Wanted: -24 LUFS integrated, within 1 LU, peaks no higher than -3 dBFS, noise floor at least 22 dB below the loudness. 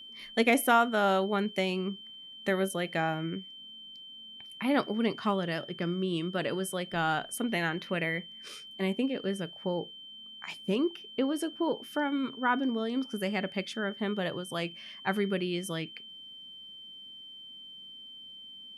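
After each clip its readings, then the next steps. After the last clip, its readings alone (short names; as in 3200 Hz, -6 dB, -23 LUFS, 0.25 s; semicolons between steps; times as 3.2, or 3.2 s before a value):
steady tone 3100 Hz; tone level -45 dBFS; loudness -31.0 LUFS; peak -12.5 dBFS; loudness target -24.0 LUFS
-> notch 3100 Hz, Q 30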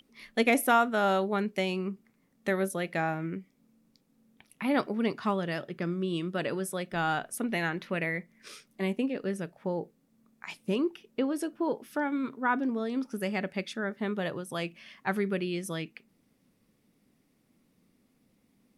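steady tone none; loudness -31.0 LUFS; peak -12.5 dBFS; loudness target -24.0 LUFS
-> gain +7 dB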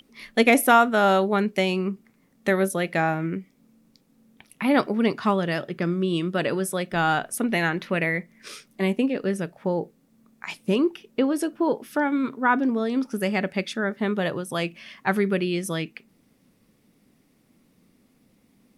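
loudness -24.0 LUFS; peak -5.0 dBFS; noise floor -63 dBFS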